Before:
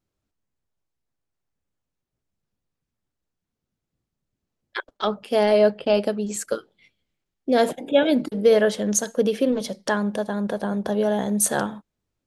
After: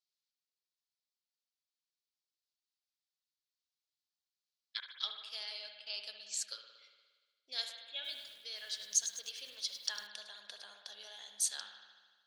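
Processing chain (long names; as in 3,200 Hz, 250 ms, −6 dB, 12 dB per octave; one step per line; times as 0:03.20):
high-shelf EQ 3,700 Hz −8.5 dB
speech leveller within 4 dB 0.5 s
four-pole ladder band-pass 5,100 Hz, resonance 50%
spring reverb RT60 1.5 s, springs 58 ms, chirp 20 ms, DRR 4.5 dB
0:07.94–0:10.07: feedback echo at a low word length 102 ms, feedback 55%, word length 10 bits, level −10 dB
level +8.5 dB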